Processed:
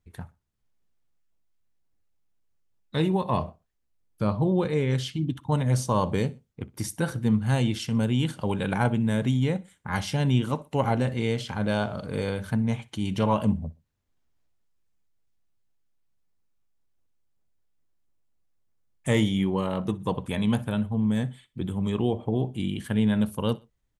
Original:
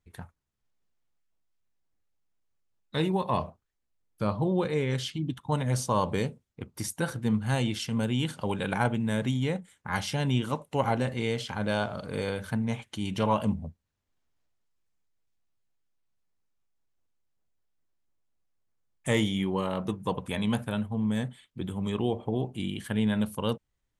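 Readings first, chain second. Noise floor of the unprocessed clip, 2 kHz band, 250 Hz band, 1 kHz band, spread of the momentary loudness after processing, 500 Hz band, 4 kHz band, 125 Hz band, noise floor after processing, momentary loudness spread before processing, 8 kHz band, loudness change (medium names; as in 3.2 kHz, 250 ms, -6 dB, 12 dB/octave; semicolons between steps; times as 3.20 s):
-80 dBFS, +0.5 dB, +3.5 dB, +1.0 dB, 8 LU, +2.0 dB, 0.0 dB, +4.5 dB, -74 dBFS, 8 LU, 0.0 dB, +3.0 dB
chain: bass shelf 380 Hz +5 dB; on a send: feedback delay 62 ms, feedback 36%, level -22.5 dB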